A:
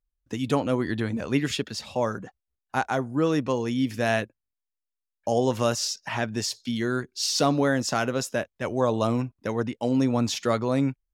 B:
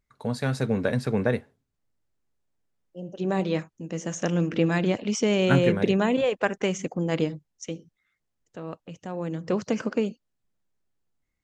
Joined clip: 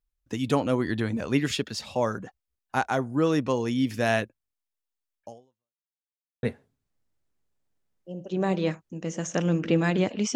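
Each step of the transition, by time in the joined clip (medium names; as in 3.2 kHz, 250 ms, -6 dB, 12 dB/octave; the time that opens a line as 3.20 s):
A
5.19–5.84 s: fade out exponential
5.84–6.43 s: mute
6.43 s: go over to B from 1.31 s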